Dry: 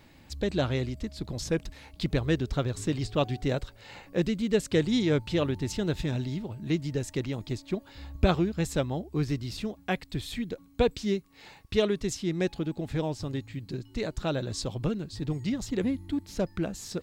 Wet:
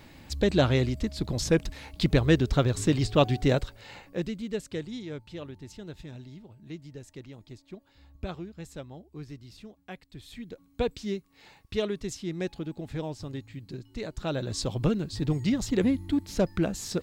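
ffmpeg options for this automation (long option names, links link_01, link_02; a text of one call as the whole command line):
ffmpeg -i in.wav -af "volume=22dB,afade=type=out:start_time=3.5:duration=0.69:silence=0.334965,afade=type=out:start_time=4.19:duration=0.81:silence=0.375837,afade=type=in:start_time=10.14:duration=0.66:silence=0.354813,afade=type=in:start_time=14.12:duration=0.74:silence=0.398107" out.wav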